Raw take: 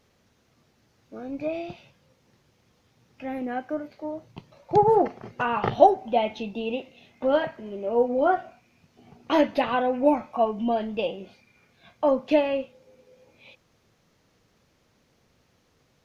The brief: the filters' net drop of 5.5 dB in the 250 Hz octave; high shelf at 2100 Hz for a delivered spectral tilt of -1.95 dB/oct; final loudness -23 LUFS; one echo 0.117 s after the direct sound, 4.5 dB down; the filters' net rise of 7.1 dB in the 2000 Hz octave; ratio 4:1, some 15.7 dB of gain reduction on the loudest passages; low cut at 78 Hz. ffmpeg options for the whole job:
-af "highpass=78,equalizer=f=250:t=o:g=-7,equalizer=f=2k:t=o:g=7.5,highshelf=f=2.1k:g=4.5,acompressor=threshold=-29dB:ratio=4,aecho=1:1:117:0.596,volume=9.5dB"

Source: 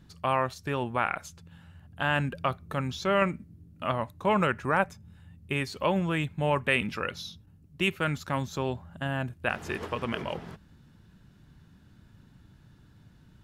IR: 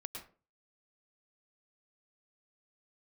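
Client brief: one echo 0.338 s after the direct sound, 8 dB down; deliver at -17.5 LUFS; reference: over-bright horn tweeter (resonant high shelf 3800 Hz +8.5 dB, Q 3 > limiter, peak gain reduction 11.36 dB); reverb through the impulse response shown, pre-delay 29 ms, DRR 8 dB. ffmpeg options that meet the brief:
-filter_complex "[0:a]aecho=1:1:338:0.398,asplit=2[a][b];[1:a]atrim=start_sample=2205,adelay=29[c];[b][c]afir=irnorm=-1:irlink=0,volume=-5.5dB[d];[a][d]amix=inputs=2:normalize=0,highshelf=f=3.8k:t=q:w=3:g=8.5,volume=16dB,alimiter=limit=-6.5dB:level=0:latency=1"

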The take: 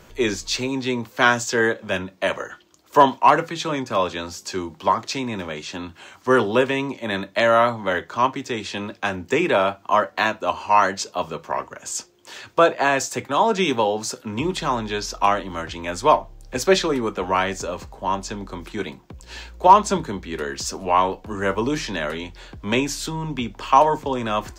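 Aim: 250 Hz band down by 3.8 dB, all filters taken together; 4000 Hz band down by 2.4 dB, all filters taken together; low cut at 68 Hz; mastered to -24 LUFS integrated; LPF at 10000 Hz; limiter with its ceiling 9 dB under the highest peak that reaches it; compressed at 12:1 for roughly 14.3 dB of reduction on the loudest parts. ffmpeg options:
-af "highpass=68,lowpass=10k,equalizer=f=250:t=o:g=-5,equalizer=f=4k:t=o:g=-3,acompressor=threshold=-21dB:ratio=12,volume=6.5dB,alimiter=limit=-12.5dB:level=0:latency=1"

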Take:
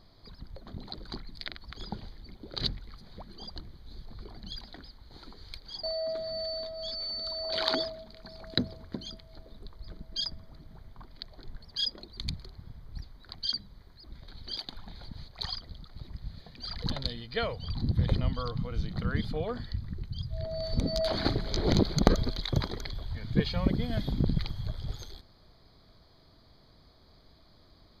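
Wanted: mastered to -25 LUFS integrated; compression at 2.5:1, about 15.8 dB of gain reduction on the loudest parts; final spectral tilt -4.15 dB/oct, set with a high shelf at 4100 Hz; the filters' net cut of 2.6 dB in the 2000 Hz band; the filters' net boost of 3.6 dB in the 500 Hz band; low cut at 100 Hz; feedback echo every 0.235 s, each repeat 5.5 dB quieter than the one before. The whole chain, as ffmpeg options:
-af "highpass=100,equalizer=f=500:t=o:g=5,equalizer=f=2k:t=o:g=-4.5,highshelf=f=4.1k:g=4,acompressor=threshold=-40dB:ratio=2.5,aecho=1:1:235|470|705|940|1175|1410|1645:0.531|0.281|0.149|0.079|0.0419|0.0222|0.0118,volume=16dB"

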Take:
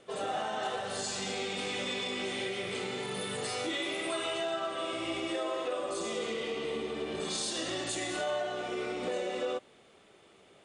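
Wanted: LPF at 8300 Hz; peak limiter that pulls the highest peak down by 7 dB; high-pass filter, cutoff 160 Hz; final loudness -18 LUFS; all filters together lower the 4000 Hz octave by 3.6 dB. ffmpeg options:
-af "highpass=160,lowpass=8.3k,equalizer=f=4k:t=o:g=-4.5,volume=20dB,alimiter=limit=-10dB:level=0:latency=1"

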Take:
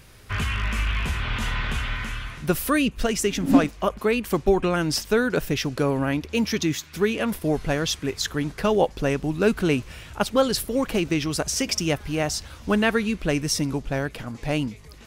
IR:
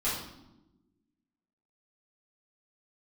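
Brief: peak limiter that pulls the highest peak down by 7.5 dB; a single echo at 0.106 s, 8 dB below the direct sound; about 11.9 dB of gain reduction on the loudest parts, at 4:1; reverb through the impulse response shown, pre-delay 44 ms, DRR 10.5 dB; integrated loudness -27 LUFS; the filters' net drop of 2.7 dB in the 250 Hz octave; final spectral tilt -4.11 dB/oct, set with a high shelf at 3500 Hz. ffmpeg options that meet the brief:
-filter_complex "[0:a]equalizer=f=250:t=o:g=-3.5,highshelf=f=3.5k:g=7,acompressor=threshold=-29dB:ratio=4,alimiter=limit=-22dB:level=0:latency=1,aecho=1:1:106:0.398,asplit=2[a][b];[1:a]atrim=start_sample=2205,adelay=44[c];[b][c]afir=irnorm=-1:irlink=0,volume=-18.5dB[d];[a][d]amix=inputs=2:normalize=0,volume=5dB"

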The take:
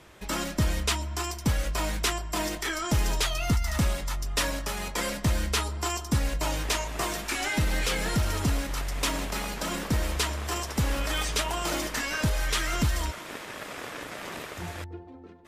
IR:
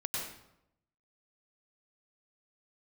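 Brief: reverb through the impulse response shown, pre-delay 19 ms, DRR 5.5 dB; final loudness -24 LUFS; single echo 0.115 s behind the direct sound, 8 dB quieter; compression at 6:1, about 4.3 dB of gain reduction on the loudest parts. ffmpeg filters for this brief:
-filter_complex "[0:a]acompressor=threshold=-25dB:ratio=6,aecho=1:1:115:0.398,asplit=2[a][b];[1:a]atrim=start_sample=2205,adelay=19[c];[b][c]afir=irnorm=-1:irlink=0,volume=-9dB[d];[a][d]amix=inputs=2:normalize=0,volume=5.5dB"

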